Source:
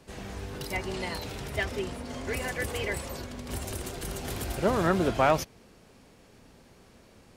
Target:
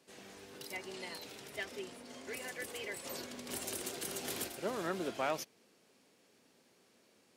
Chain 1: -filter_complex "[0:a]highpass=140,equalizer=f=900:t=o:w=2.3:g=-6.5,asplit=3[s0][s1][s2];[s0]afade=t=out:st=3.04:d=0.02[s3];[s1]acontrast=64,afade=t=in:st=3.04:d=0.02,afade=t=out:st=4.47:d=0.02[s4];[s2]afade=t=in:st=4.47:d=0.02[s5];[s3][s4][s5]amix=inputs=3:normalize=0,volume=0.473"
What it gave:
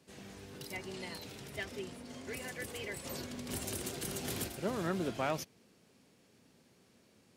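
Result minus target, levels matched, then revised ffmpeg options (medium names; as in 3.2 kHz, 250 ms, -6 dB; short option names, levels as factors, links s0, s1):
125 Hz band +9.0 dB
-filter_complex "[0:a]highpass=310,equalizer=f=900:t=o:w=2.3:g=-6.5,asplit=3[s0][s1][s2];[s0]afade=t=out:st=3.04:d=0.02[s3];[s1]acontrast=64,afade=t=in:st=3.04:d=0.02,afade=t=out:st=4.47:d=0.02[s4];[s2]afade=t=in:st=4.47:d=0.02[s5];[s3][s4][s5]amix=inputs=3:normalize=0,volume=0.473"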